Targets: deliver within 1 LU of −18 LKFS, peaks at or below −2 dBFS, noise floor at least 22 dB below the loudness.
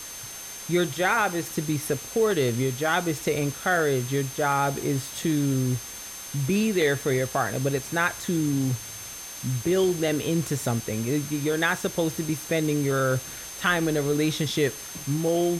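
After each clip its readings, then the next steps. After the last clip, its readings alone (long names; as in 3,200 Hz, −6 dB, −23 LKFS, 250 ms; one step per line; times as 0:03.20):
interfering tone 6,300 Hz; level of the tone −40 dBFS; background noise floor −39 dBFS; target noise floor −48 dBFS; integrated loudness −25.5 LKFS; sample peak −9.0 dBFS; target loudness −18.0 LKFS
→ notch filter 6,300 Hz, Q 30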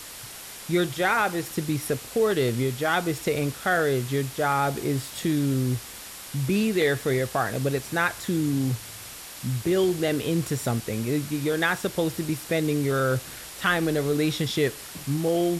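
interfering tone none found; background noise floor −41 dBFS; target noise floor −48 dBFS
→ noise reduction from a noise print 7 dB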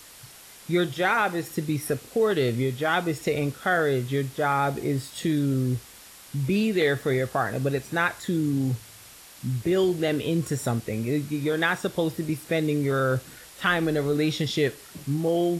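background noise floor −48 dBFS; integrated loudness −26.0 LKFS; sample peak −9.0 dBFS; target loudness −18.0 LKFS
→ level +8 dB
brickwall limiter −2 dBFS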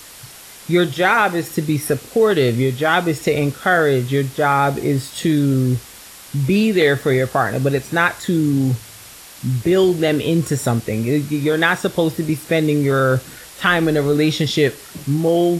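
integrated loudness −18.0 LKFS; sample peak −2.0 dBFS; background noise floor −40 dBFS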